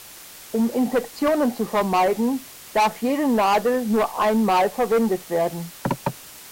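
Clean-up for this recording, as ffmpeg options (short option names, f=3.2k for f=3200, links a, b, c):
-af "adeclick=t=4,afftdn=nr=25:nf=-42"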